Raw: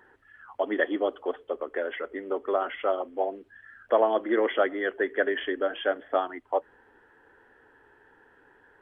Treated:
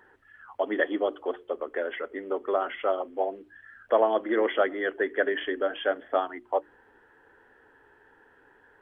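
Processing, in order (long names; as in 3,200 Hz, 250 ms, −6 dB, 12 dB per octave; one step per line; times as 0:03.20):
mains-hum notches 60/120/180/240/300/360 Hz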